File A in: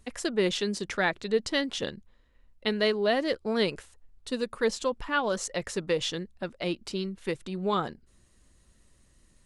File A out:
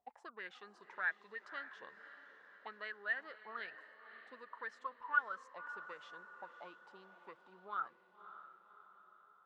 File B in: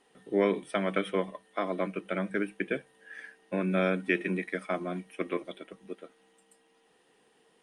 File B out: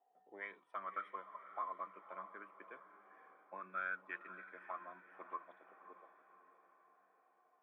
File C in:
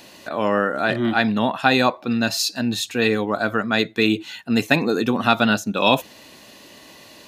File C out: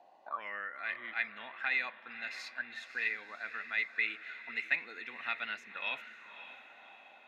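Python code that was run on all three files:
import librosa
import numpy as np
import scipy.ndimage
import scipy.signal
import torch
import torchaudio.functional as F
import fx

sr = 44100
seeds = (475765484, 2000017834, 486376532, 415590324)

y = fx.auto_wah(x, sr, base_hz=720.0, top_hz=2100.0, q=13.0, full_db=-18.5, direction='up')
y = fx.echo_diffused(y, sr, ms=567, feedback_pct=51, wet_db=-12.5)
y = y * 10.0 ** (2.0 / 20.0)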